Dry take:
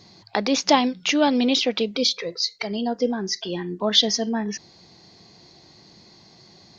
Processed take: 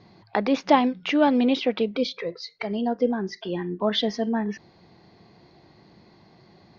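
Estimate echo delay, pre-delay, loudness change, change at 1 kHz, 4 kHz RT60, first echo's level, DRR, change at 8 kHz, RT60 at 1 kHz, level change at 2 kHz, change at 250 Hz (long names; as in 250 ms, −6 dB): no echo audible, no reverb audible, −2.5 dB, 0.0 dB, no reverb audible, no echo audible, no reverb audible, can't be measured, no reverb audible, −2.5 dB, 0.0 dB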